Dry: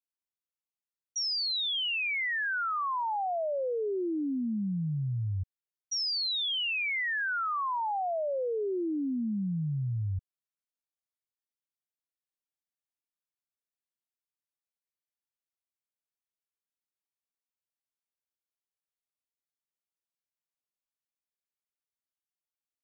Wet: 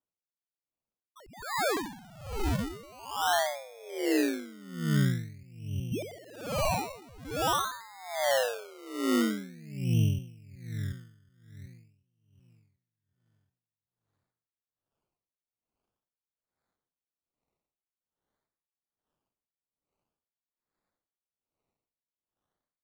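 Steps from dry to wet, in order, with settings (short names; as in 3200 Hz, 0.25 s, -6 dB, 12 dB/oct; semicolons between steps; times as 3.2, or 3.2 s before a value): split-band echo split 550 Hz, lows 0.368 s, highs 0.211 s, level -4.5 dB; vocal rider within 4 dB 2 s; spectral noise reduction 6 dB; decimation with a swept rate 21×, swing 60% 0.47 Hz; dB-linear tremolo 1.2 Hz, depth 25 dB; gain +4 dB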